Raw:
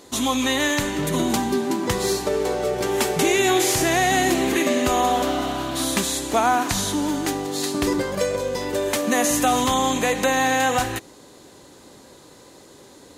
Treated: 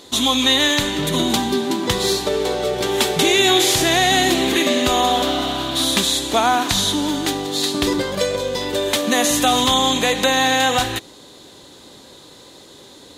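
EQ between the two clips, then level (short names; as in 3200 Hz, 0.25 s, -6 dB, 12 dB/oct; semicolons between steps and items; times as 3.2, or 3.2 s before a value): bell 3600 Hz +10.5 dB 0.58 oct; +2.0 dB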